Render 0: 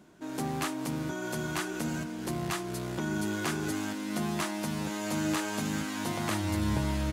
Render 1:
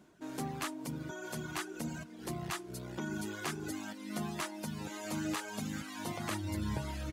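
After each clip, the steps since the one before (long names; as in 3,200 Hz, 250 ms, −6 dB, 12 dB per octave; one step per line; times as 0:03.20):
reverb reduction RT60 1.4 s
level −4 dB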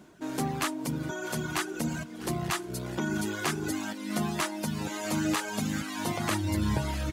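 feedback echo with a high-pass in the loop 649 ms, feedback 63%, level −20 dB
level +8 dB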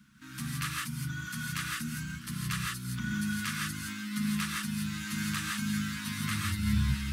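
Chebyshev band-stop filter 220–1,300 Hz, order 3
parametric band 7,000 Hz −5 dB 0.31 octaves
reverb whose tail is shaped and stops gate 190 ms rising, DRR −2 dB
level −3.5 dB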